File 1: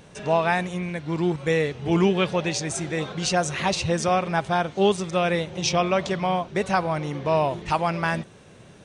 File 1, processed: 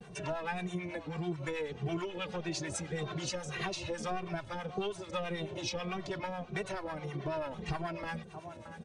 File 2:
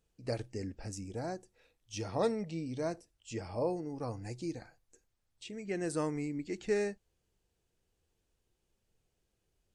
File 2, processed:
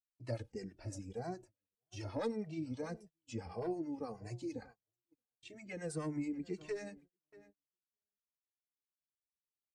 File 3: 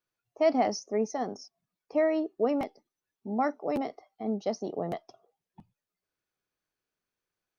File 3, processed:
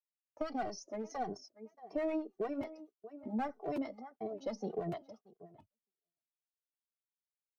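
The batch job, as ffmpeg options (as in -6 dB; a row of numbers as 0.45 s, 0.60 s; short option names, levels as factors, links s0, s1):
-filter_complex "[0:a]aphaser=in_gain=1:out_gain=1:delay=3.4:decay=0.24:speed=0.64:type=sinusoidal,highpass=40,asplit=2[s0][s1];[s1]adelay=622,lowpass=f=2000:p=1,volume=0.1,asplit=2[s2][s3];[s3]adelay=622,lowpass=f=2000:p=1,volume=0.29[s4];[s0][s2][s4]amix=inputs=3:normalize=0,acrossover=split=430|2400[s5][s6][s7];[s5]alimiter=limit=0.0631:level=0:latency=1[s8];[s6]aeval=exprs='clip(val(0),-1,0.0251)':c=same[s9];[s7]aecho=1:1:4.7:0.68[s10];[s8][s9][s10]amix=inputs=3:normalize=0,agate=range=0.02:threshold=0.00282:ratio=16:detection=peak,highshelf=f=3700:g=-6.5,acrossover=split=710[s11][s12];[s11]aeval=exprs='val(0)*(1-0.7/2+0.7/2*cos(2*PI*9.2*n/s))':c=same[s13];[s12]aeval=exprs='val(0)*(1-0.7/2-0.7/2*cos(2*PI*9.2*n/s))':c=same[s14];[s13][s14]amix=inputs=2:normalize=0,acompressor=threshold=0.0224:ratio=6,asplit=2[s15][s16];[s16]adelay=2.1,afreqshift=-1.7[s17];[s15][s17]amix=inputs=2:normalize=1,volume=1.33"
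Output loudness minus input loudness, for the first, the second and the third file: -14.0 LU, -5.0 LU, -9.5 LU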